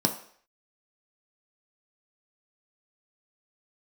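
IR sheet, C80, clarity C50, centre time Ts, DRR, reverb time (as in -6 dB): 14.0 dB, 11.0 dB, 13 ms, 3.5 dB, 0.55 s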